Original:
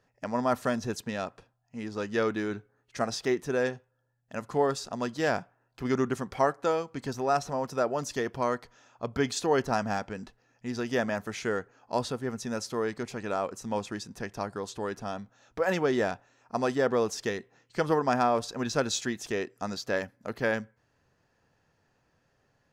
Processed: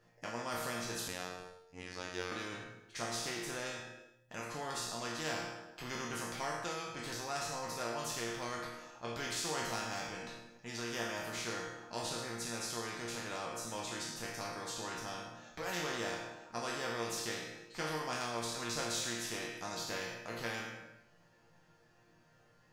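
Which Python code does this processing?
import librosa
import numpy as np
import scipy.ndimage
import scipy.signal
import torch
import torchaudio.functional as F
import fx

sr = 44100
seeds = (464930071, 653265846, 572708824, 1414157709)

y = fx.spec_trails(x, sr, decay_s=0.53)
y = fx.resonator_bank(y, sr, root=46, chord='sus4', decay_s=0.44)
y = fx.robotise(y, sr, hz=90.6, at=(1.08, 2.32))
y = fx.echo_feedback(y, sr, ms=106, feedback_pct=42, wet_db=-15.0)
y = fx.spectral_comp(y, sr, ratio=2.0)
y = y * librosa.db_to_amplitude(6.5)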